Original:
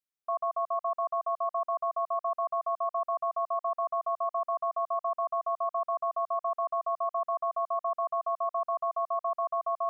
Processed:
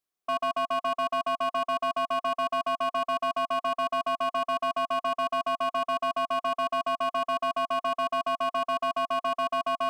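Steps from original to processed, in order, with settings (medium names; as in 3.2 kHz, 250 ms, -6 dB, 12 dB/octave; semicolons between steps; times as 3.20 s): peak limiter -28 dBFS, peak gain reduction 5 dB; small resonant body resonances 380/700/1100 Hz, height 8 dB, ringing for 25 ms; overload inside the chain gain 27.5 dB; trim +3.5 dB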